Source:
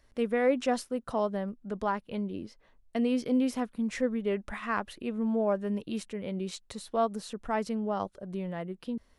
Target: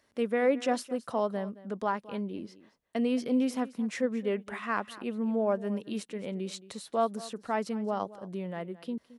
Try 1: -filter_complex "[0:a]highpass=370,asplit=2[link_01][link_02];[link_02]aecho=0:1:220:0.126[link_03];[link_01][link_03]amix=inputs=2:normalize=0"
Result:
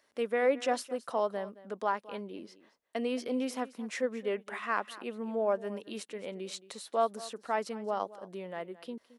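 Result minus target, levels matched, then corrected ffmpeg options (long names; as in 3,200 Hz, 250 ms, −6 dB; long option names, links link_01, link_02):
125 Hz band −7.0 dB
-filter_complex "[0:a]highpass=160,asplit=2[link_01][link_02];[link_02]aecho=0:1:220:0.126[link_03];[link_01][link_03]amix=inputs=2:normalize=0"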